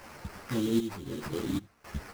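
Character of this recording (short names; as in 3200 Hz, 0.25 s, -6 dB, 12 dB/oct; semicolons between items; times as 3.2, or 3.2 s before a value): a quantiser's noise floor 8-bit, dither triangular; random-step tremolo 3.8 Hz, depth 90%; aliases and images of a low sample rate 3600 Hz, jitter 20%; a shimmering, thickened sound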